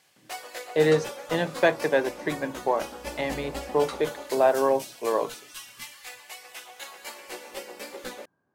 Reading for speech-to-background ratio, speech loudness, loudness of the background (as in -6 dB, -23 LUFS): 12.5 dB, -26.0 LUFS, -38.5 LUFS